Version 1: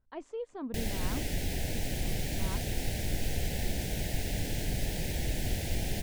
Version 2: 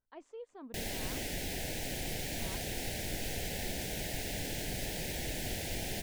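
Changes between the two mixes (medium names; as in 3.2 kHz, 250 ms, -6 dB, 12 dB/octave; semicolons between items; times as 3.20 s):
speech -7.0 dB; master: add bass shelf 190 Hz -10.5 dB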